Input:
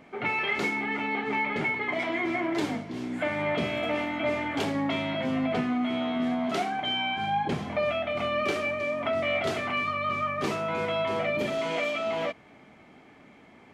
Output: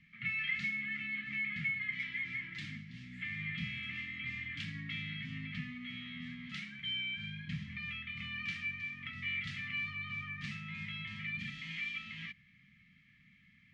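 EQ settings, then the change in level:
elliptic band-stop filter 180–1,800 Hz, stop band 50 dB
Butterworth band-reject 1,500 Hz, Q 7.5
low-pass filter 3,800 Hz 12 dB per octave
−5.0 dB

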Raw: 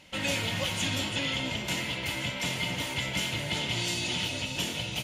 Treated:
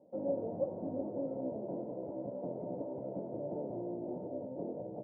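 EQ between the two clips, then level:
high-pass filter 400 Hz 12 dB per octave
Butterworth low-pass 630 Hz 36 dB per octave
high-frequency loss of the air 230 metres
+5.5 dB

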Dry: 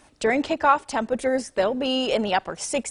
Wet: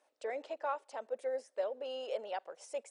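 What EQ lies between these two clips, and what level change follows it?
resonant band-pass 530 Hz, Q 3.1
first difference
+10.5 dB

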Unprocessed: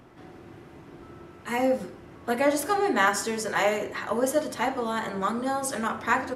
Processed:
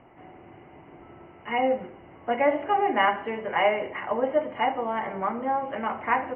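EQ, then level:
Chebyshev low-pass with heavy ripple 3,000 Hz, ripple 9 dB
+4.5 dB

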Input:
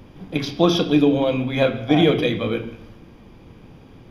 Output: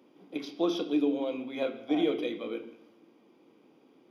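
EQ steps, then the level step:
four-pole ladder high-pass 250 Hz, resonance 40%
notch filter 1,700 Hz, Q 7.8
−6.5 dB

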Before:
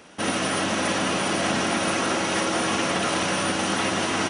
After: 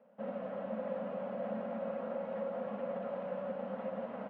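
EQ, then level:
pair of resonant band-passes 340 Hz, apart 1.3 octaves
high-frequency loss of the air 450 metres
low-shelf EQ 400 Hz −12 dB
+1.5 dB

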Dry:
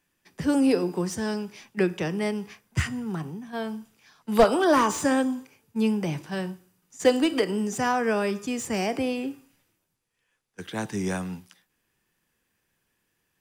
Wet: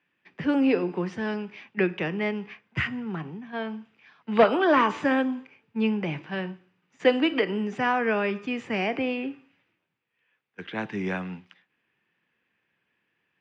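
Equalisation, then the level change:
high-pass filter 140 Hz 12 dB per octave
head-to-tape spacing loss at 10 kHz 37 dB
parametric band 2,500 Hz +14 dB 1.6 octaves
0.0 dB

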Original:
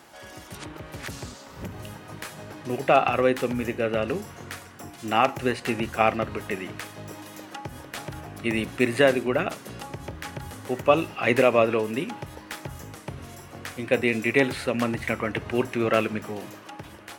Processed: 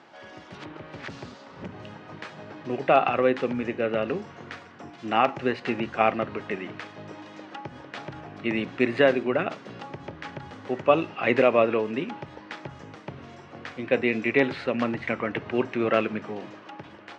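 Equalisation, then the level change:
band-pass filter 140–5,800 Hz
high-frequency loss of the air 130 metres
0.0 dB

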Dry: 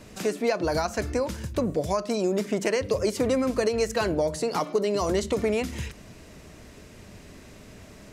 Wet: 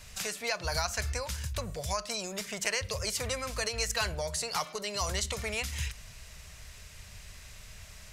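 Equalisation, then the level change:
guitar amp tone stack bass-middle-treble 10-0-10
low-shelf EQ 130 Hz +6 dB
+4.5 dB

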